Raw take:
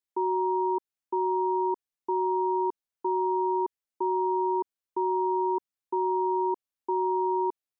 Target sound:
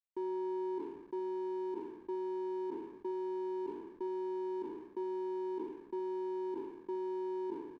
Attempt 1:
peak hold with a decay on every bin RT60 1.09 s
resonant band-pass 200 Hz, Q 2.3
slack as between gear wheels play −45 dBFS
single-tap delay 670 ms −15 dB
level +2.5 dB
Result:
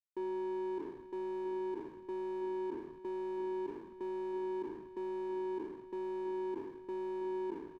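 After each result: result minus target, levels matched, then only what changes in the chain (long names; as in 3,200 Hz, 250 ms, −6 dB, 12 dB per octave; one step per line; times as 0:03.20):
echo 356 ms early; slack as between gear wheels: distortion +8 dB
change: single-tap delay 1,026 ms −15 dB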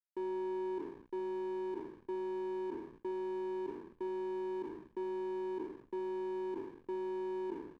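slack as between gear wheels: distortion +8 dB
change: slack as between gear wheels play −53 dBFS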